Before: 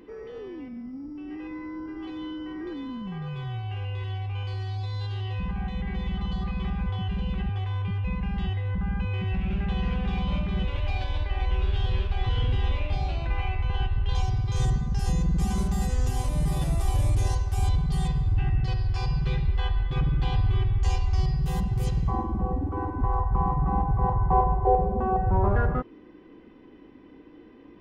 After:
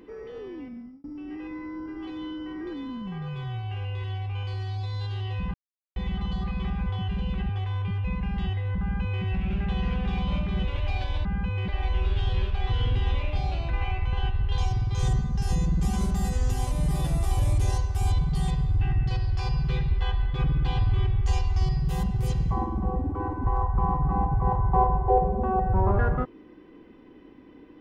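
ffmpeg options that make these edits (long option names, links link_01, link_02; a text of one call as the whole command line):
ffmpeg -i in.wav -filter_complex "[0:a]asplit=6[link_01][link_02][link_03][link_04][link_05][link_06];[link_01]atrim=end=1.04,asetpts=PTS-STARTPTS,afade=type=out:start_time=0.58:duration=0.46:curve=qsin[link_07];[link_02]atrim=start=1.04:end=5.54,asetpts=PTS-STARTPTS,afade=type=in:duration=0.004:curve=hsin,afade=type=out:start_time=4.496:duration=0.004:curve=hsin[link_08];[link_03]atrim=start=5.54:end=5.96,asetpts=PTS-STARTPTS,volume=0[link_09];[link_04]atrim=start=5.96:end=11.252,asetpts=PTS-STARTPTS,afade=type=in:duration=0.004:curve=hsin[link_10];[link_05]atrim=start=8.808:end=9.242[link_11];[link_06]atrim=start=11.248[link_12];[link_07][link_08][link_09][link_10]concat=n=4:v=0:a=1[link_13];[link_13][link_11]acrossfade=duration=0.004:curve1=hsin:curve2=hsin[link_14];[link_14][link_12]acrossfade=duration=0.004:curve1=hsin:curve2=hsin" out.wav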